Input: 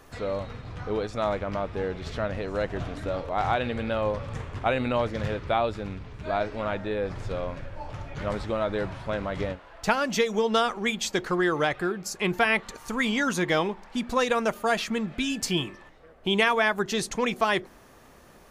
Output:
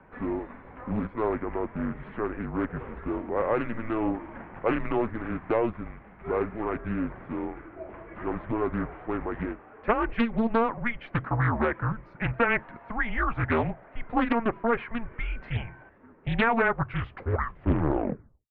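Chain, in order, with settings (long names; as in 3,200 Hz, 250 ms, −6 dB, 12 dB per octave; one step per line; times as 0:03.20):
turntable brake at the end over 1.78 s
single-sideband voice off tune −230 Hz 220–2,400 Hz
highs frequency-modulated by the lows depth 0.62 ms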